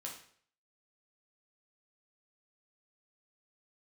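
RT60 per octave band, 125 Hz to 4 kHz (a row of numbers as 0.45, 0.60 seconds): 0.60, 0.55, 0.55, 0.55, 0.55, 0.50 seconds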